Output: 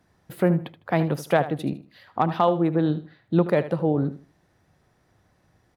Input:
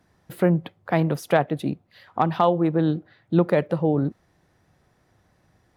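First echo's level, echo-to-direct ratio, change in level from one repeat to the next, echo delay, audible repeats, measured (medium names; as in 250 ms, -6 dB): -13.5 dB, -13.5 dB, -13.0 dB, 77 ms, 2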